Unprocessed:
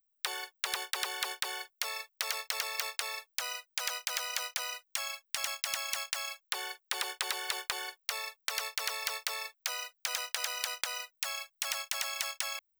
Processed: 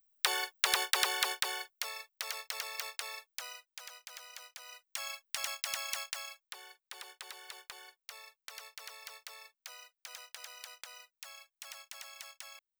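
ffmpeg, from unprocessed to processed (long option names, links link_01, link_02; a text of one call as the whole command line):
ffmpeg -i in.wav -af "volume=17dB,afade=type=out:start_time=0.95:duration=0.99:silence=0.316228,afade=type=out:start_time=3.17:duration=0.69:silence=0.334965,afade=type=in:start_time=4.64:duration=0.47:silence=0.251189,afade=type=out:start_time=5.94:duration=0.63:silence=0.281838" out.wav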